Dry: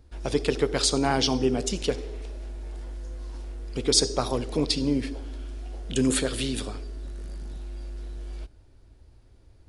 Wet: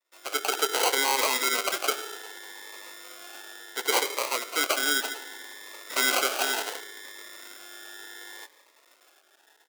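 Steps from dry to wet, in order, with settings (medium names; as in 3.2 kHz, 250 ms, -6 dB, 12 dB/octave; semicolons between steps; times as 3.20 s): 5.56–6.17 s: comb filter that takes the minimum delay 0.56 ms; bit crusher 10-bit; level-controlled noise filter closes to 1.3 kHz, open at -22 dBFS; level rider gain up to 8 dB; expander -43 dBFS; comb 0.8 ms, depth 76%; sample-and-hold 25×; Bessel high-pass 760 Hz, order 6; loudness maximiser +9 dB; Shepard-style phaser rising 0.68 Hz; trim -5.5 dB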